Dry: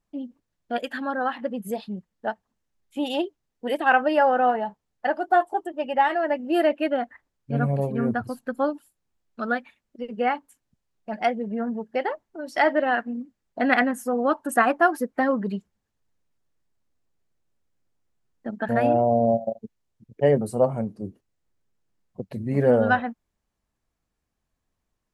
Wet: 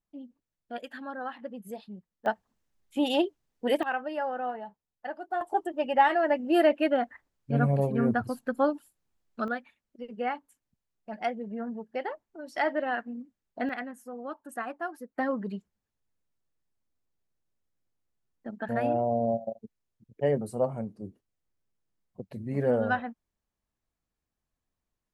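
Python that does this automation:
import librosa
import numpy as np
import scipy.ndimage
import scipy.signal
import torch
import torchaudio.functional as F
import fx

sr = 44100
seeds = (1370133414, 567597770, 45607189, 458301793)

y = fx.gain(x, sr, db=fx.steps((0.0, -10.5), (2.26, 0.5), (3.83, -12.5), (5.41, -1.0), (9.48, -7.5), (13.69, -16.0), (15.18, -7.0)))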